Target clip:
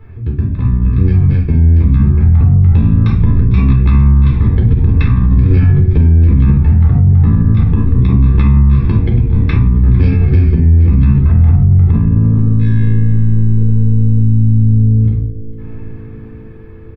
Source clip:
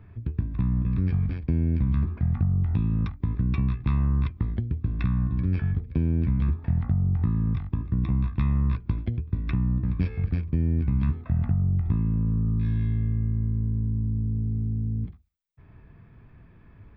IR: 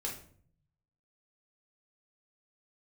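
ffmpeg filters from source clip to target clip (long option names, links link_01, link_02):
-filter_complex "[0:a]dynaudnorm=framelen=870:gausssize=5:maxgain=5dB,asplit=6[link_01][link_02][link_03][link_04][link_05][link_06];[link_02]adelay=452,afreqshift=-110,volume=-16dB[link_07];[link_03]adelay=904,afreqshift=-220,volume=-20.9dB[link_08];[link_04]adelay=1356,afreqshift=-330,volume=-25.8dB[link_09];[link_05]adelay=1808,afreqshift=-440,volume=-30.6dB[link_10];[link_06]adelay=2260,afreqshift=-550,volume=-35.5dB[link_11];[link_01][link_07][link_08][link_09][link_10][link_11]amix=inputs=6:normalize=0[link_12];[1:a]atrim=start_sample=2205[link_13];[link_12][link_13]afir=irnorm=-1:irlink=0,alimiter=level_in=11.5dB:limit=-1dB:release=50:level=0:latency=1,volume=-1dB"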